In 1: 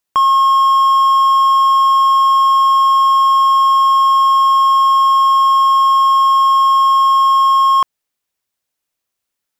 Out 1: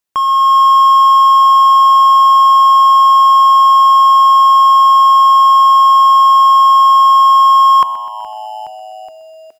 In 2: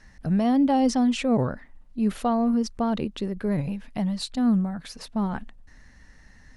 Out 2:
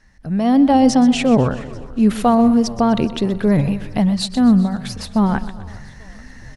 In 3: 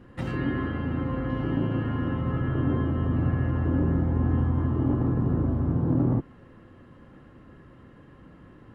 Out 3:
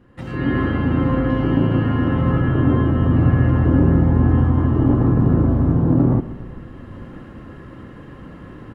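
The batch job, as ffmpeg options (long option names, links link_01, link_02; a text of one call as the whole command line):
ffmpeg -i in.wav -filter_complex "[0:a]asplit=2[link_01][link_02];[link_02]asplit=4[link_03][link_04][link_05][link_06];[link_03]adelay=419,afreqshift=-110,volume=-23dB[link_07];[link_04]adelay=838,afreqshift=-220,volume=-27.4dB[link_08];[link_05]adelay=1257,afreqshift=-330,volume=-31.9dB[link_09];[link_06]adelay=1676,afreqshift=-440,volume=-36.3dB[link_10];[link_07][link_08][link_09][link_10]amix=inputs=4:normalize=0[link_11];[link_01][link_11]amix=inputs=2:normalize=0,dynaudnorm=framelen=280:gausssize=3:maxgain=14.5dB,asplit=2[link_12][link_13];[link_13]aecho=0:1:126|252|378|504|630:0.168|0.094|0.0526|0.0295|0.0165[link_14];[link_12][link_14]amix=inputs=2:normalize=0,volume=-2.5dB" out.wav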